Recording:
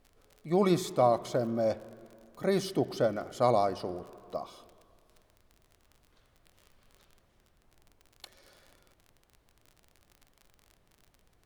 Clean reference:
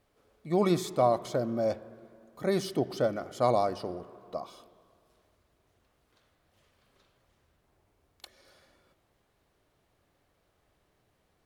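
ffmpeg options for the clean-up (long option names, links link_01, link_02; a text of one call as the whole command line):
ffmpeg -i in.wav -af "adeclick=threshold=4,agate=range=-21dB:threshold=-60dB" out.wav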